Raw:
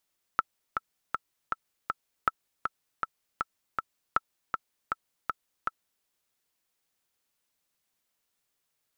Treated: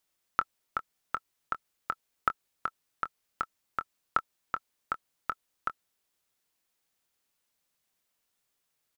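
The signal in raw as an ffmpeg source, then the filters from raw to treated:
-f lavfi -i "aevalsrc='pow(10,(-9.5-5.5*gte(mod(t,5*60/159),60/159))/20)*sin(2*PI*1320*mod(t,60/159))*exp(-6.91*mod(t,60/159)/0.03)':duration=5.66:sample_rate=44100"
-filter_complex "[0:a]asplit=2[link_01][link_02];[link_02]adelay=24,volume=-12.5dB[link_03];[link_01][link_03]amix=inputs=2:normalize=0"

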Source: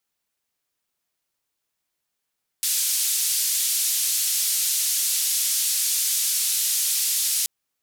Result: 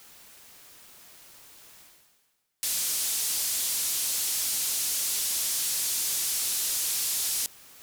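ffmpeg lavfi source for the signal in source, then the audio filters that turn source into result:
-f lavfi -i "anoisesrc=color=white:duration=4.83:sample_rate=44100:seed=1,highpass=frequency=4300,lowpass=frequency=13000,volume=-14dB"
-af "areverse,acompressor=mode=upward:threshold=-28dB:ratio=2.5,areverse,asoftclip=type=tanh:threshold=-25.5dB"

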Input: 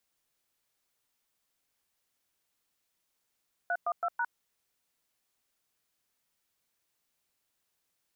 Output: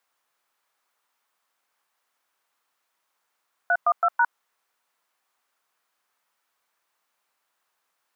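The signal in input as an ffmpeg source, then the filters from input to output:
-f lavfi -i "aevalsrc='0.0316*clip(min(mod(t,0.164),0.056-mod(t,0.164))/0.002,0,1)*(eq(floor(t/0.164),0)*(sin(2*PI*697*mod(t,0.164))+sin(2*PI*1477*mod(t,0.164)))+eq(floor(t/0.164),1)*(sin(2*PI*697*mod(t,0.164))+sin(2*PI*1209*mod(t,0.164)))+eq(floor(t/0.164),2)*(sin(2*PI*697*mod(t,0.164))+sin(2*PI*1336*mod(t,0.164)))+eq(floor(t/0.164),3)*(sin(2*PI*941*mod(t,0.164))+sin(2*PI*1477*mod(t,0.164))))':duration=0.656:sample_rate=44100"
-af "highpass=frequency=300:poles=1,equalizer=frequency=1100:width_type=o:width=2:gain=13.5"

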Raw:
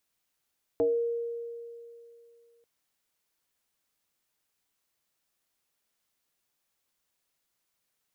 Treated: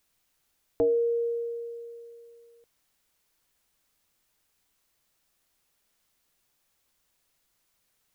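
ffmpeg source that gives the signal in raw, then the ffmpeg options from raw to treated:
-f lavfi -i "aevalsrc='0.0891*pow(10,-3*t/2.66)*sin(2*PI*468*t+0.94*pow(10,-3*t/0.34)*sin(2*PI*0.38*468*t))':duration=1.84:sample_rate=44100"
-filter_complex "[0:a]lowshelf=frequency=68:gain=10.5,asplit=2[link_01][link_02];[link_02]alimiter=level_in=7dB:limit=-24dB:level=0:latency=1,volume=-7dB,volume=0dB[link_03];[link_01][link_03]amix=inputs=2:normalize=0"

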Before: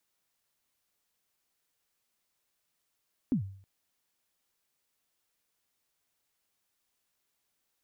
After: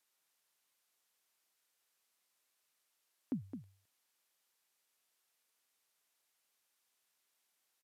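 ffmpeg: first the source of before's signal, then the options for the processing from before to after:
-f lavfi -i "aevalsrc='0.0841*pow(10,-3*t/0.54)*sin(2*PI*(290*0.104/log(97/290)*(exp(log(97/290)*min(t,0.104)/0.104)-1)+97*max(t-0.104,0)))':duration=0.32:sample_rate=44100"
-filter_complex "[0:a]highpass=frequency=540:poles=1,asplit=2[link_01][link_02];[link_02]aecho=0:1:214:0.376[link_03];[link_01][link_03]amix=inputs=2:normalize=0,aresample=32000,aresample=44100"

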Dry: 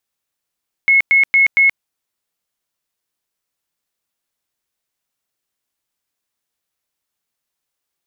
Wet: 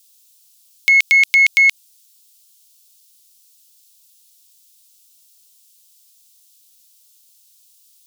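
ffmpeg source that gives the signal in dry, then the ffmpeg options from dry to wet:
-f lavfi -i "aevalsrc='0.398*sin(2*PI*2180*mod(t,0.23))*lt(mod(t,0.23),274/2180)':duration=0.92:sample_rate=44100"
-af "alimiter=limit=-13dB:level=0:latency=1:release=75,aexciter=amount=12.2:drive=6.7:freq=2800"

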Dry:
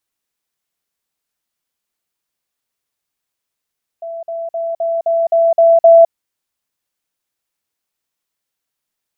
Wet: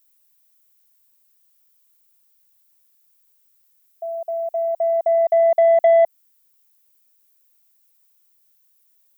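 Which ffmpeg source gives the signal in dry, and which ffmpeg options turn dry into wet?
-f lavfi -i "aevalsrc='pow(10,(-23.5+3*floor(t/0.26))/20)*sin(2*PI*667*t)*clip(min(mod(t,0.26),0.21-mod(t,0.26))/0.005,0,1)':duration=2.08:sample_rate=44100"
-af "aemphasis=mode=production:type=bsi,acompressor=threshold=-11dB:ratio=2.5,asoftclip=type=tanh:threshold=-7.5dB"

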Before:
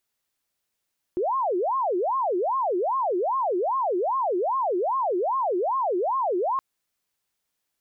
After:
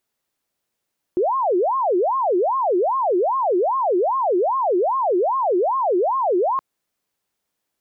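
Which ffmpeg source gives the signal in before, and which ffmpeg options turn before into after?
-f lavfi -i "aevalsrc='0.0841*sin(2*PI*(714*t-366/(2*PI*2.5)*sin(2*PI*2.5*t)))':duration=5.42:sample_rate=44100"
-af "equalizer=frequency=350:width=0.32:gain=6.5"

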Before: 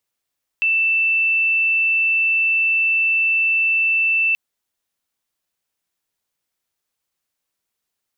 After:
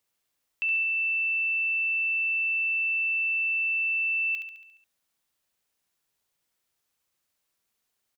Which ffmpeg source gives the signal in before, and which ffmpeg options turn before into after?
-f lavfi -i "aevalsrc='0.188*sin(2*PI*2660*t)':duration=3.73:sample_rate=44100"
-af "alimiter=limit=-23.5dB:level=0:latency=1:release=13,aecho=1:1:70|140|210|280|350|420|490:0.398|0.227|0.129|0.0737|0.042|0.024|0.0137"

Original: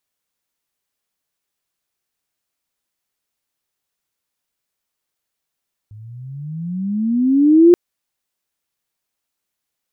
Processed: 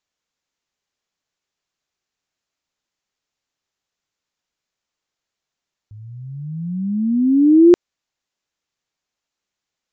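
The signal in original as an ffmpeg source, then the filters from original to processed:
-f lavfi -i "aevalsrc='pow(10,(-4+31*(t/1.83-1))/20)*sin(2*PI*103*1.83/(21.5*log(2)/12)*(exp(21.5*log(2)/12*t/1.83)-1))':duration=1.83:sample_rate=44100"
-af "aresample=16000,aresample=44100"

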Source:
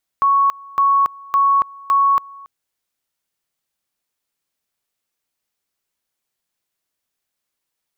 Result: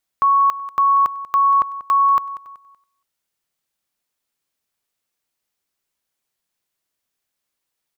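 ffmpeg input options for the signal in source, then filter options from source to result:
-f lavfi -i "aevalsrc='pow(10,(-11-24*gte(mod(t,0.56),0.28))/20)*sin(2*PI*1110*t)':duration=2.24:sample_rate=44100"
-af "aecho=1:1:189|378|567:0.158|0.0523|0.0173"

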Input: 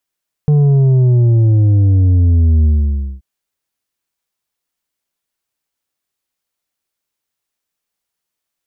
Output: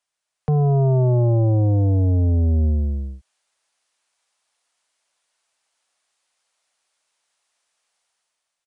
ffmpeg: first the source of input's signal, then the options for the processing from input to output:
-f lavfi -i "aevalsrc='0.398*clip((2.73-t)/0.56,0,1)*tanh(2*sin(2*PI*150*2.73/log(65/150)*(exp(log(65/150)*t/2.73)-1)))/tanh(2)':duration=2.73:sample_rate=44100"
-filter_complex "[0:a]lowshelf=frequency=490:width_type=q:width=1.5:gain=-7,acrossover=split=120|260[link_01][link_02][link_03];[link_03]dynaudnorm=framelen=200:gausssize=7:maxgain=9dB[link_04];[link_01][link_02][link_04]amix=inputs=3:normalize=0,aresample=22050,aresample=44100"

